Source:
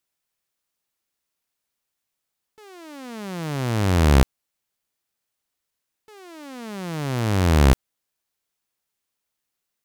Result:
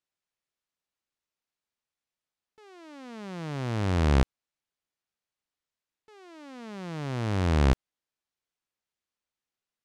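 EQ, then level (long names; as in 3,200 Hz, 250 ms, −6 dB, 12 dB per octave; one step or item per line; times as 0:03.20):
high-frequency loss of the air 64 metres
−6.5 dB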